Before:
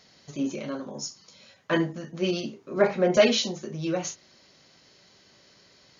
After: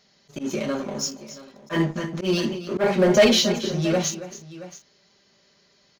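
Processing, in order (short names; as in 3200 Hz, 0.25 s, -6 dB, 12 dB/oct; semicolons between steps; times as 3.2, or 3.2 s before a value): comb 5 ms, depth 41%; sample leveller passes 2; tapped delay 0.277/0.676 s -15/-17.5 dB; in parallel at -8 dB: hard clip -20.5 dBFS, distortion -5 dB; on the sum: auto swell 0.117 s; gain -3.5 dB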